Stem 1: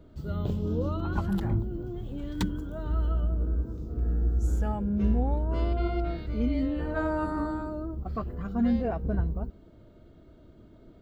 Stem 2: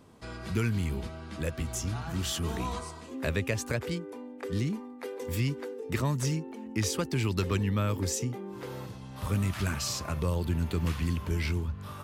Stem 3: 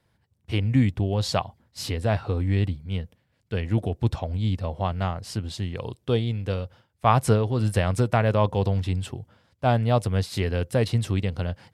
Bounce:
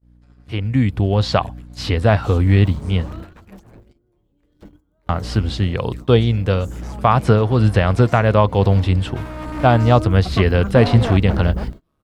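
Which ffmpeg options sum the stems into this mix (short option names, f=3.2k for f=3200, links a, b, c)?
-filter_complex "[0:a]aemphasis=mode=production:type=cd,aeval=exprs='0.0501*(abs(mod(val(0)/0.0501+3,4)-2)-1)':c=same,adelay=2200,volume=-2.5dB,afade=t=in:st=9.34:d=0.59:silence=0.251189[a];[1:a]acompressor=threshold=-38dB:ratio=5,aeval=exprs='val(0)*sin(2*PI*71*n/s)':c=same,volume=-11.5dB[b];[2:a]equalizer=f=1.3k:t=o:w=0.77:g=3.5,alimiter=limit=-11.5dB:level=0:latency=1:release=294,aeval=exprs='val(0)+0.00891*(sin(2*PI*60*n/s)+sin(2*PI*2*60*n/s)/2+sin(2*PI*3*60*n/s)/3+sin(2*PI*4*60*n/s)/4+sin(2*PI*5*60*n/s)/5)':c=same,volume=-2dB,asplit=3[c][d][e];[c]atrim=end=3.22,asetpts=PTS-STARTPTS,afade=t=out:st=3.216:d=0.004:c=hsin[f];[d]atrim=start=3.22:end=5.09,asetpts=PTS-STARTPTS,volume=0[g];[e]atrim=start=5.09,asetpts=PTS-STARTPTS,afade=t=in:d=0.004:c=hsin[h];[f][g][h]concat=n=3:v=0:a=1[i];[a][b][i]amix=inputs=3:normalize=0,acrossover=split=4700[j][k];[k]acompressor=threshold=-57dB:ratio=4:attack=1:release=60[l];[j][l]amix=inputs=2:normalize=0,agate=range=-29dB:threshold=-43dB:ratio=16:detection=peak,dynaudnorm=f=360:g=5:m=15dB"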